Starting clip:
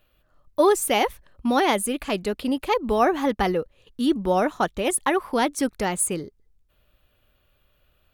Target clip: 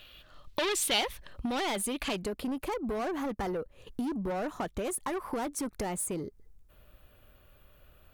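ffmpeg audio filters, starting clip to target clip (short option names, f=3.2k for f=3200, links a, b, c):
-af "asoftclip=type=tanh:threshold=-24.5dB,acompressor=threshold=-38dB:ratio=10,asetnsamples=n=441:p=0,asendcmd='1.01 equalizer g 6;2.17 equalizer g -6',equalizer=f=3.5k:t=o:w=1.5:g=15,volume=6.5dB"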